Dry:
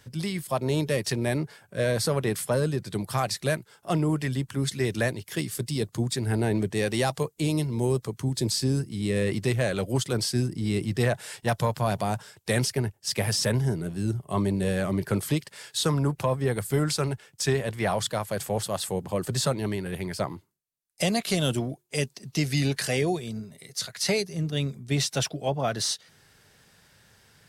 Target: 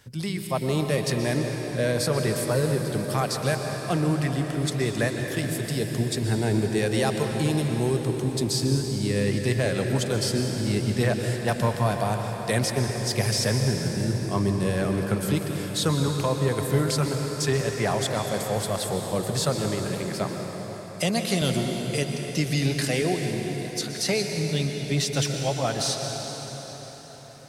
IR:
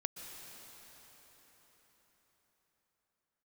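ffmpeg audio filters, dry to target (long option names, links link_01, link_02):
-filter_complex "[0:a]asettb=1/sr,asplit=3[link_01][link_02][link_03];[link_01]atrim=end=19.854[link_04];[link_02]atrim=start=19.85:end=21.42,asetpts=PTS-STARTPTS,afade=type=in:duration=0.004:curve=qsin,afade=type=out:start_time=1.566:duration=0.004:curve=qsin,highpass=frequency=120:width=0.5412,highpass=frequency=120:width=1.3066[link_05];[link_03]atrim=start=21.416[link_06];[link_04][link_05]acrossfade=duration=0.004:curve1=hsin:curve2=qsin[link_07];[link_07][link_06]acrossfade=duration=0.004:curve1=qsin:curve2=hsin[link_08];[1:a]atrim=start_sample=2205[link_09];[link_08][link_09]afir=irnorm=-1:irlink=0,volume=2dB"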